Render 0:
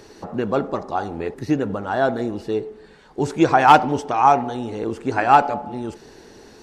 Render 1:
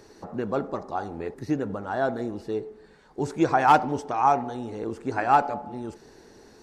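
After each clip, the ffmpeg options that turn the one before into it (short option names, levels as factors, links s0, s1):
-af "equalizer=f=3000:w=2.2:g=-5,volume=0.501"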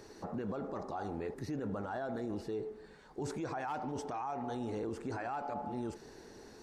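-af "acompressor=threshold=0.0501:ratio=5,alimiter=level_in=1.78:limit=0.0631:level=0:latency=1:release=13,volume=0.562,volume=0.794"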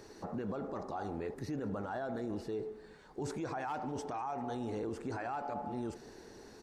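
-af "aecho=1:1:198|396|594:0.0668|0.0348|0.0181"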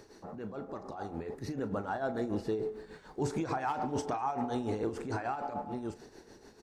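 -filter_complex "[0:a]dynaudnorm=f=340:g=9:m=2.37,tremolo=f=6.8:d=0.62,asplit=2[s0][s1];[s1]adelay=37,volume=0.2[s2];[s0][s2]amix=inputs=2:normalize=0"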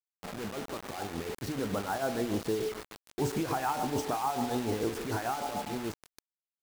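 -af "acrusher=bits=6:mix=0:aa=0.000001,volume=1.26"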